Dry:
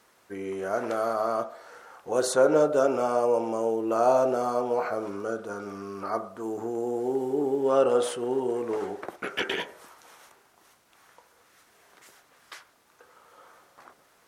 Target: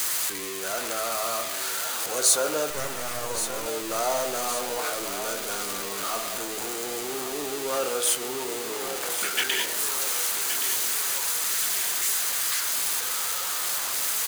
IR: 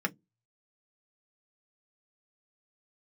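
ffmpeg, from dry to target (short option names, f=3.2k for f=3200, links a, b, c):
-filter_complex "[0:a]aeval=exprs='val(0)+0.5*0.0447*sgn(val(0))':c=same,tiltshelf=f=1.1k:g=-8,bandreject=f=5.5k:w=15,acrossover=split=200|4900[a][b][c];[c]acontrast=74[d];[a][b][d]amix=inputs=3:normalize=0,asettb=1/sr,asplit=3[e][f][g];[e]atrim=end=2.704[h];[f]atrim=start=2.7:end=3.66,asetpts=PTS-STARTPTS,afade=t=in:d=0.004:c=qsin,afade=t=out:st=0.956:d=0.004:c=qsin,aeval=exprs='max(val(0),0)':c=same[i];[g]atrim=start=3.656[j];[h][i]acrossfade=d=0.004:c1=hsin:c2=qsin[k];[k][j]acrossfade=d=0.004:c1=qsin:c2=hsin,asplit=2[l][m];[m]aecho=0:1:1122|2244|3366|4488|5610|6732:0.316|0.161|0.0823|0.0419|0.0214|0.0109[n];[l][n]amix=inputs=2:normalize=0,volume=-4dB"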